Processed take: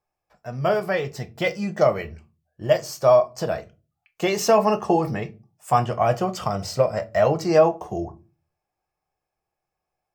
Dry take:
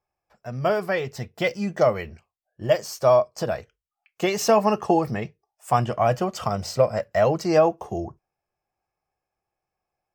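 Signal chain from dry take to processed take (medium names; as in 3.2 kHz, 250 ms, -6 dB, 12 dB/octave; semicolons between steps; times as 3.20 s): simulated room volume 120 m³, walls furnished, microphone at 0.49 m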